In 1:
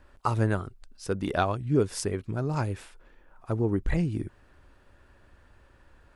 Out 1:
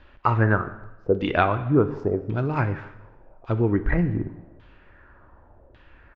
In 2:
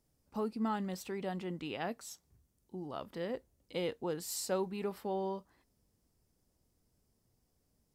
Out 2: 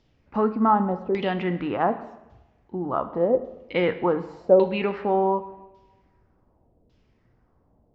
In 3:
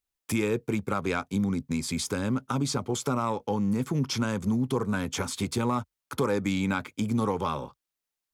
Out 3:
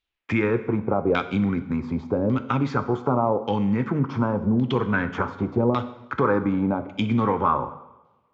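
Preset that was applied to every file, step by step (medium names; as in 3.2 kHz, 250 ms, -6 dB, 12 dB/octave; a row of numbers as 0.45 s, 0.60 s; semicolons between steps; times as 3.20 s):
LFO low-pass saw down 0.87 Hz 520–3500 Hz; two-slope reverb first 0.91 s, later 2.3 s, from -24 dB, DRR 9.5 dB; resampled via 16 kHz; normalise loudness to -24 LUFS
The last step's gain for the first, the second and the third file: +4.0 dB, +12.5 dB, +4.0 dB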